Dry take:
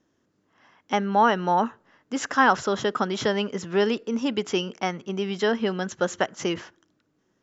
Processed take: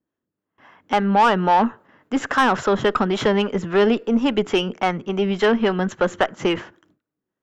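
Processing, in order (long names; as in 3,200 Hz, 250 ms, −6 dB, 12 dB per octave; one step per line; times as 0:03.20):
noise gate with hold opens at −52 dBFS
parametric band 5,600 Hz −12.5 dB 1.2 octaves
in parallel at +0.5 dB: brickwall limiter −14.5 dBFS, peak gain reduction 7.5 dB
on the sum: two-band tremolo in antiphase 3.6 Hz, depth 50%, crossover 440 Hz
harmonic generator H 8 −27 dB, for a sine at −4 dBFS
soft clipping −11.5 dBFS, distortion −16 dB
level +4 dB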